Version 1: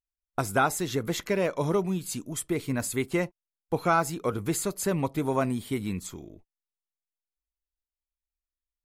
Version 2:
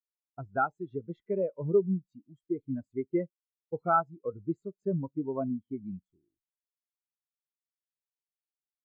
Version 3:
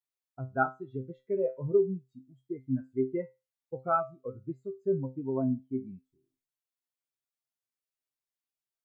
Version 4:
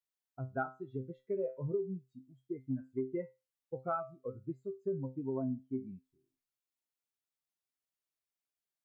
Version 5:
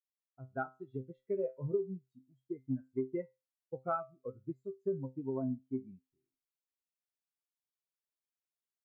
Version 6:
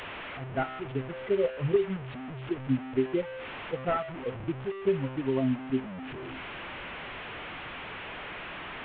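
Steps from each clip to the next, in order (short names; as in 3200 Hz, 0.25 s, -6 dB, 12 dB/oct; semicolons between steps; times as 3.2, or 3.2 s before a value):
LPF 4900 Hz 12 dB/oct; spectral expander 2.5:1; gain -1 dB
resonator 130 Hz, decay 0.24 s, harmonics all, mix 90%; gain +8 dB
compressor 6:1, threshold -29 dBFS, peak gain reduction 10 dB; gain -2.5 dB
opening faded in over 0.74 s; upward expander 1.5:1, over -50 dBFS; gain +2.5 dB
delta modulation 16 kbps, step -41.5 dBFS; gain +8.5 dB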